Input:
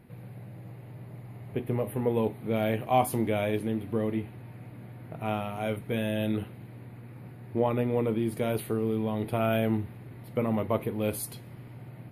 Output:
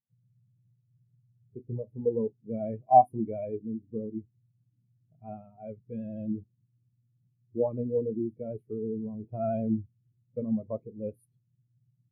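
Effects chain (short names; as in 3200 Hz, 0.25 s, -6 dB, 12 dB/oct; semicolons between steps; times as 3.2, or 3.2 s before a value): vibrato 12 Hz 33 cents; spectral expander 2.5:1; gain +3.5 dB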